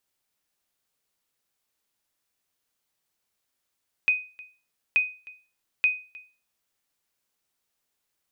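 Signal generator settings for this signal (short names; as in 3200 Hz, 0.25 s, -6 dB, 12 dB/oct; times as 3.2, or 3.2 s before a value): sonar ping 2500 Hz, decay 0.35 s, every 0.88 s, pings 3, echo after 0.31 s, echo -22.5 dB -14 dBFS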